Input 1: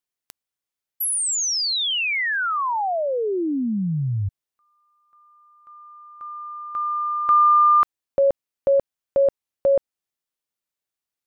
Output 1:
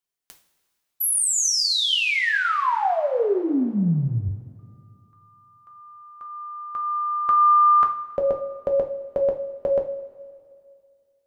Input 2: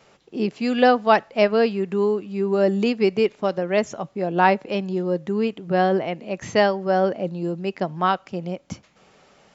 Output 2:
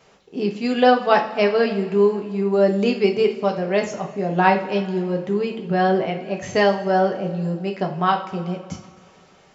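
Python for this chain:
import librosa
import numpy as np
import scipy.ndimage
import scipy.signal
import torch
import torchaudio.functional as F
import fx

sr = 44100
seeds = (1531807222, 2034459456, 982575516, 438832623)

y = fx.rev_double_slope(x, sr, seeds[0], early_s=0.34, late_s=2.3, knee_db=-18, drr_db=2.0)
y = y * librosa.db_to_amplitude(-1.0)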